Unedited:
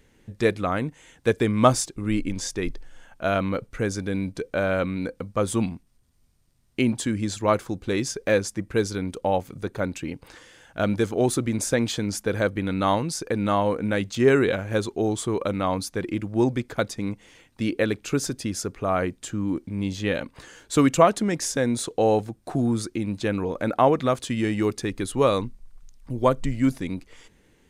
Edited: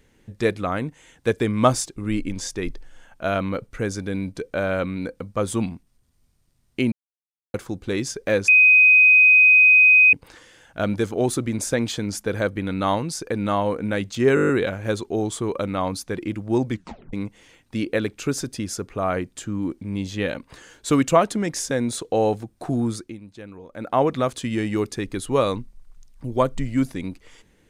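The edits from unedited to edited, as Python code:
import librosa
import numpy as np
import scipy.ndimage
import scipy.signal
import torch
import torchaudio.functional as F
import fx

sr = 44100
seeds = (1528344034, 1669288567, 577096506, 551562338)

y = fx.edit(x, sr, fx.silence(start_s=6.92, length_s=0.62),
    fx.bleep(start_s=8.48, length_s=1.65, hz=2510.0, db=-9.5),
    fx.stutter(start_s=14.35, slice_s=0.02, count=8),
    fx.tape_stop(start_s=16.57, length_s=0.42),
    fx.fade_down_up(start_s=22.74, length_s=1.16, db=-14.5, fade_s=0.32), tone=tone)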